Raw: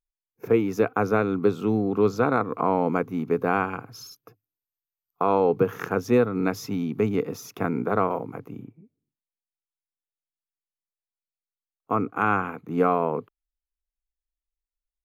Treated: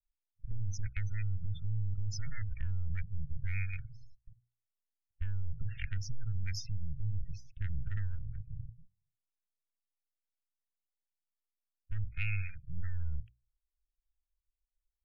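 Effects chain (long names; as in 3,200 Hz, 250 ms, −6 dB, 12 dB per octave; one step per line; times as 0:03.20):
gain on one half-wave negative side −12 dB
gate on every frequency bin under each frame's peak −20 dB strong
low-pass that shuts in the quiet parts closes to 340 Hz, open at −21.5 dBFS
inverse Chebyshev band-stop filter 240–1,200 Hz, stop band 50 dB
mains-hum notches 60/120/180/240/300/360/420/480 Hz
brickwall limiter −33 dBFS, peak gain reduction 10.5 dB
harmonic and percussive parts rebalanced percussive +4 dB
level +7 dB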